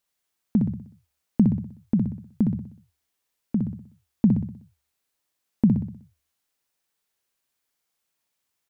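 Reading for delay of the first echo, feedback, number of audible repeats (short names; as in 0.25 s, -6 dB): 62 ms, 47%, 5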